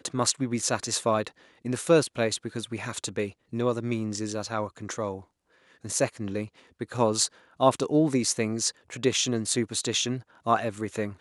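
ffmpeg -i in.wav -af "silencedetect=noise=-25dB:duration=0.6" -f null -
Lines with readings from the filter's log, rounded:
silence_start: 5.14
silence_end: 5.90 | silence_duration: 0.76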